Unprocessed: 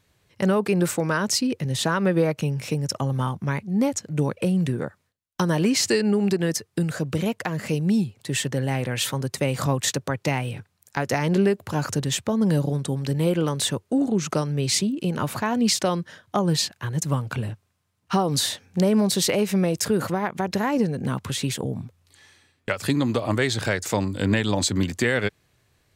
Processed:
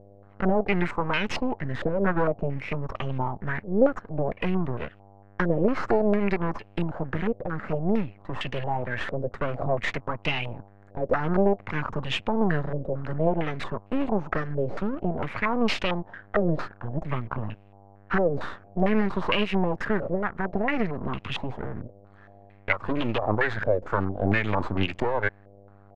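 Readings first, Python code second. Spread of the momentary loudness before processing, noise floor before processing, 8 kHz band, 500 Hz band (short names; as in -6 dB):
7 LU, -70 dBFS, under -25 dB, -1.0 dB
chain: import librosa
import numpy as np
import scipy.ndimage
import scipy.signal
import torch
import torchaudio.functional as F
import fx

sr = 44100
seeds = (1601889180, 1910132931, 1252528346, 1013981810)

y = fx.dmg_buzz(x, sr, base_hz=100.0, harmonics=7, level_db=-50.0, tilt_db=-5, odd_only=False)
y = np.maximum(y, 0.0)
y = fx.filter_held_lowpass(y, sr, hz=4.4, low_hz=550.0, high_hz=2700.0)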